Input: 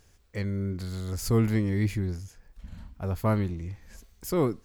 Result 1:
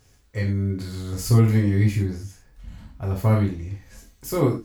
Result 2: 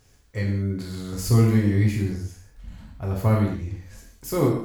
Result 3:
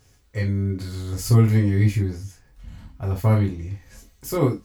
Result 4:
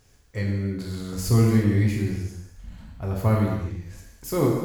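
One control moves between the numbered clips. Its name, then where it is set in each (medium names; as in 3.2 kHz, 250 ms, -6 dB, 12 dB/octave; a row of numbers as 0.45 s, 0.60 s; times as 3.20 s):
gated-style reverb, gate: 130 ms, 230 ms, 90 ms, 380 ms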